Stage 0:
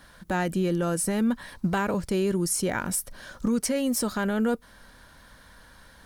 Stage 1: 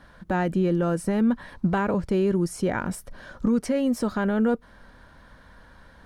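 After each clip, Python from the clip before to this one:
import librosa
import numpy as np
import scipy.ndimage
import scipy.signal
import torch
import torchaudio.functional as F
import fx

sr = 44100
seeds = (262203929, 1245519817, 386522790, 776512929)

y = fx.lowpass(x, sr, hz=1500.0, slope=6)
y = y * 10.0 ** (3.0 / 20.0)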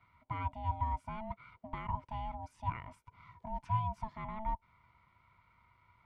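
y = fx.vowel_filter(x, sr, vowel='e')
y = y * np.sin(2.0 * np.pi * 440.0 * np.arange(len(y)) / sr)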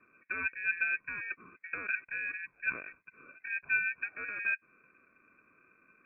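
y = fx.freq_invert(x, sr, carrier_hz=2500)
y = y * 10.0 ** (2.0 / 20.0)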